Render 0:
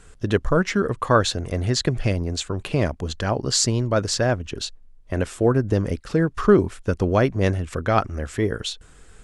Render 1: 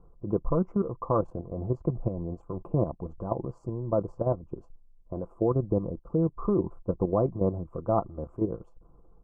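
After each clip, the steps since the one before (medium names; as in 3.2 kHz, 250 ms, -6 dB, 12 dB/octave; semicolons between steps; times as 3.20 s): elliptic low-pass 1.1 kHz, stop band 40 dB; comb 5.9 ms, depth 44%; level held to a coarse grid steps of 10 dB; trim -3 dB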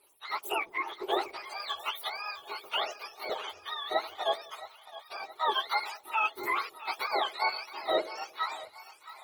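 spectrum inverted on a logarithmic axis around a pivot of 650 Hz; two-band feedback delay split 630 Hz, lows 86 ms, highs 668 ms, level -15 dB; Opus 16 kbps 48 kHz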